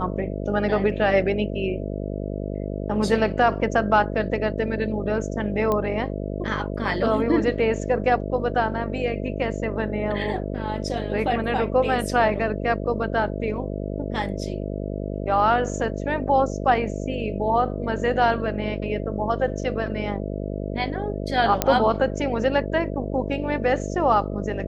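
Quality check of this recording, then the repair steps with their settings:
buzz 50 Hz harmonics 13 -29 dBFS
5.72 s: pop -12 dBFS
21.62 s: pop -3 dBFS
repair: de-click; de-hum 50 Hz, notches 13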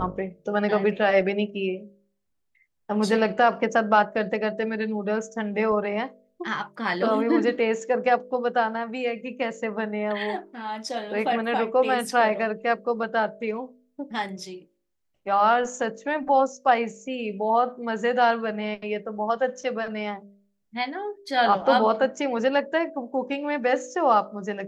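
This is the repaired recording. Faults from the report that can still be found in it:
21.62 s: pop

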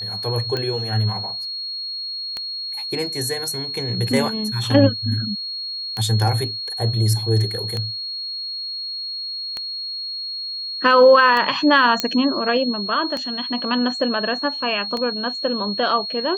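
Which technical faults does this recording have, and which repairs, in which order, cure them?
tick 33 1/3 rpm -12 dBFS
whine 4.3 kHz -26 dBFS
12.00 s: pop -3 dBFS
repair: de-click; band-stop 4.3 kHz, Q 30

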